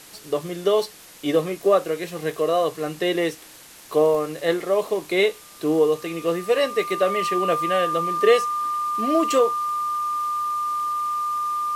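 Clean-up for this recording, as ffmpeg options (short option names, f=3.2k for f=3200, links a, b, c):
-af "adeclick=t=4,bandreject=f=1.2k:w=30,afftdn=nr=21:nf=-45"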